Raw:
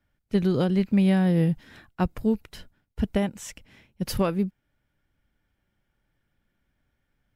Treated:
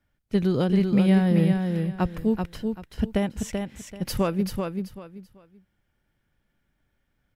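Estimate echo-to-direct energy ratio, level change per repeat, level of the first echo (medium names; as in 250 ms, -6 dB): -4.5 dB, -12.5 dB, -5.0 dB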